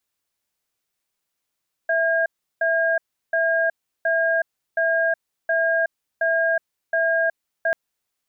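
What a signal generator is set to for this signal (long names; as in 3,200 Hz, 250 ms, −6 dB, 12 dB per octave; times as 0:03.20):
tone pair in a cadence 659 Hz, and 1,620 Hz, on 0.37 s, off 0.35 s, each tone −20 dBFS 5.84 s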